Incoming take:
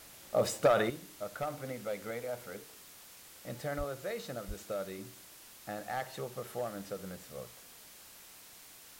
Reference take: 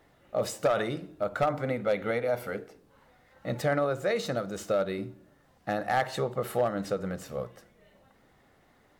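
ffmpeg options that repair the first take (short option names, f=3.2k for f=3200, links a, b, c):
-filter_complex "[0:a]asplit=3[a][b][c];[a]afade=t=out:st=3.77:d=0.02[d];[b]highpass=f=140:w=0.5412,highpass=f=140:w=1.3066,afade=t=in:st=3.77:d=0.02,afade=t=out:st=3.89:d=0.02[e];[c]afade=t=in:st=3.89:d=0.02[f];[d][e][f]amix=inputs=3:normalize=0,asplit=3[g][h][i];[g]afade=t=out:st=4.47:d=0.02[j];[h]highpass=f=140:w=0.5412,highpass=f=140:w=1.3066,afade=t=in:st=4.47:d=0.02,afade=t=out:st=4.59:d=0.02[k];[i]afade=t=in:st=4.59:d=0.02[l];[j][k][l]amix=inputs=3:normalize=0,afwtdn=0.0022,asetnsamples=n=441:p=0,asendcmd='0.9 volume volume 10.5dB',volume=0dB"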